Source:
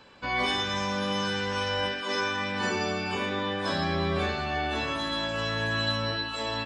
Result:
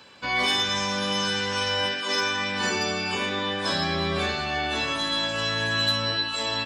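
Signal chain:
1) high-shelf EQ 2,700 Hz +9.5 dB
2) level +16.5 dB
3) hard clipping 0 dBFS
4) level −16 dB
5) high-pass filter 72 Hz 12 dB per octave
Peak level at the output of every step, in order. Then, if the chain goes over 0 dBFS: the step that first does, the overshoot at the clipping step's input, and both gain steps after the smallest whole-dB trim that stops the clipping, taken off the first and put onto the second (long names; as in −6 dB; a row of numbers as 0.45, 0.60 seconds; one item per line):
−11.5, +5.0, 0.0, −16.0, −14.5 dBFS
step 2, 5.0 dB
step 2 +11.5 dB, step 4 −11 dB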